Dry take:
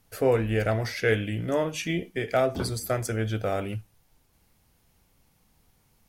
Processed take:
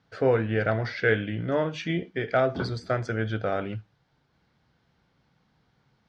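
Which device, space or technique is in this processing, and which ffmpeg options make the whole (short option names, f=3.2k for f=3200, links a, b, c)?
guitar cabinet: -filter_complex "[0:a]asettb=1/sr,asplit=3[a][b][c];[a]atrim=end=0.474[d];[b]atrim=start=0.47:end=1.58,asetpts=PTS-STARTPTS,afade=t=in:d=0.004:c=qsin,afade=t=out:st=1.106:d=0.004:c=qsin,lowpass=6.3k[e];[c]atrim=start=1.576[f];[d][e]acrossfade=d=0.004:c1=hsin:c2=qsin[g];[g][f]acrossfade=d=0.004:c1=qsin:c2=hsin,highpass=80,equalizer=f=90:t=q:w=4:g=-5,equalizer=f=140:t=q:w=4:g=5,equalizer=f=1.5k:t=q:w=4:g=6,equalizer=f=2.6k:t=q:w=4:g=-5,lowpass=f=4.5k:w=0.5412,lowpass=f=4.5k:w=1.3066"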